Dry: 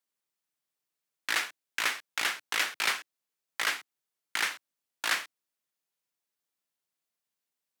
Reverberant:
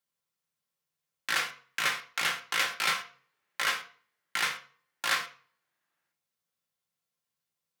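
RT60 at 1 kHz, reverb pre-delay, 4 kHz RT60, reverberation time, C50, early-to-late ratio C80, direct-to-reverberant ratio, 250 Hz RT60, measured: 0.45 s, 3 ms, 0.35 s, 0.45 s, 13.0 dB, 17.0 dB, 2.0 dB, 0.50 s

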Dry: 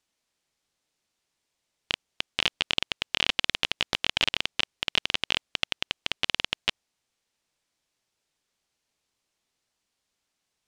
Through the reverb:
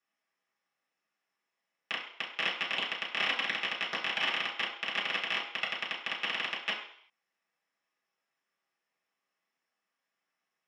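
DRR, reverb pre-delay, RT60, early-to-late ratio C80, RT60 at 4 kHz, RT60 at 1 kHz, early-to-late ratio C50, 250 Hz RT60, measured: -6.5 dB, 3 ms, 0.60 s, 9.5 dB, 0.65 s, 0.65 s, 6.5 dB, 0.50 s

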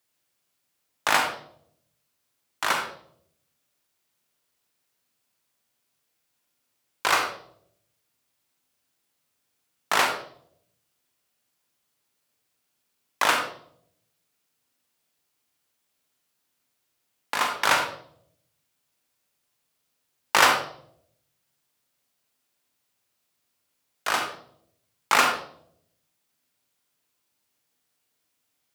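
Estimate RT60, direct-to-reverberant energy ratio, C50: 0.65 s, 3.0 dB, 5.5 dB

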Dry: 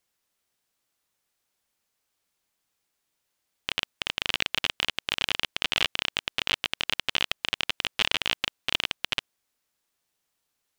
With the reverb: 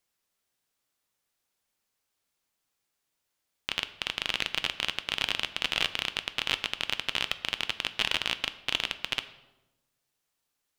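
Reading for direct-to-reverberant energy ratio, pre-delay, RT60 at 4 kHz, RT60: 11.0 dB, 7 ms, 0.70 s, 1.0 s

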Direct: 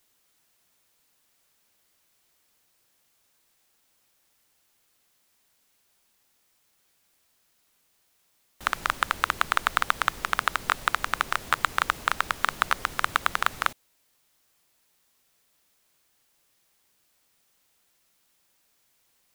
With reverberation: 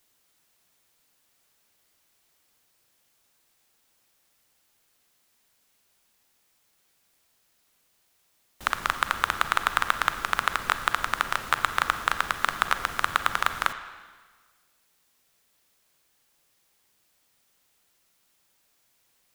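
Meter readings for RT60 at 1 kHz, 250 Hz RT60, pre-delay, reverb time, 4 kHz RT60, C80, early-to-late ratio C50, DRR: 1.5 s, 1.4 s, 35 ms, 1.5 s, 1.4 s, 12.0 dB, 10.5 dB, 9.5 dB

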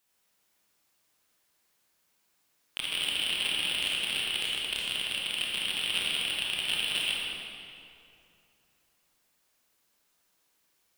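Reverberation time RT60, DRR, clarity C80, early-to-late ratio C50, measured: 2.7 s, -4.0 dB, -1.0 dB, -2.5 dB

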